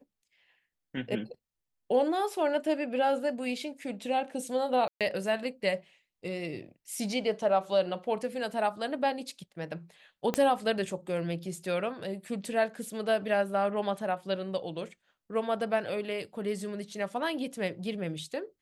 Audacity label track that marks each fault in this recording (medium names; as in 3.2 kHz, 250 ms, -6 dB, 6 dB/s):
4.880000	5.010000	dropout 127 ms
10.340000	10.340000	pop -14 dBFS